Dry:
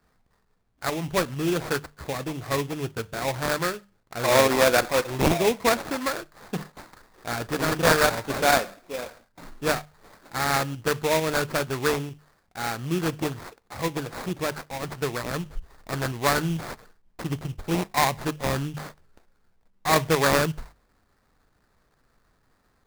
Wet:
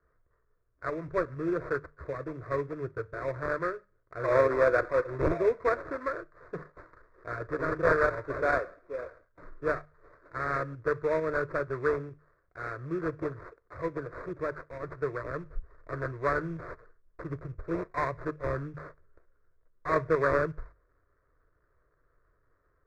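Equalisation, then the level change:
low-pass filter 1,700 Hz 12 dB per octave
phaser with its sweep stopped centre 810 Hz, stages 6
−2.0 dB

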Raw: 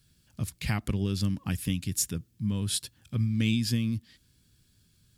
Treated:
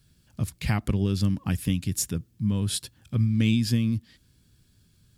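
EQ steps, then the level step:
low-shelf EQ 300 Hz +4.5 dB
parametric band 730 Hz +4 dB 2.4 octaves
0.0 dB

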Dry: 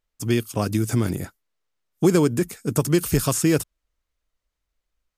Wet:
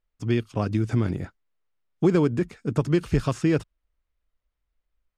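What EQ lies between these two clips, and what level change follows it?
low-pass filter 3,300 Hz 12 dB per octave
low-shelf EQ 87 Hz +6 dB
−3.0 dB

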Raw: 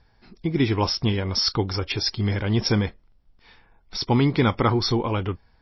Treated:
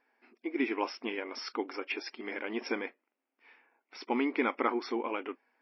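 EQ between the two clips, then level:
linear-phase brick-wall high-pass 230 Hz
high shelf with overshoot 3,100 Hz −7.5 dB, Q 3
−8.5 dB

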